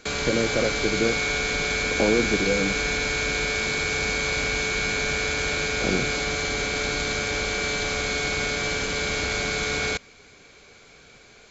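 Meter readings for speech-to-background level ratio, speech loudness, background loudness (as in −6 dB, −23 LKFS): −2.5 dB, −27.0 LKFS, −24.5 LKFS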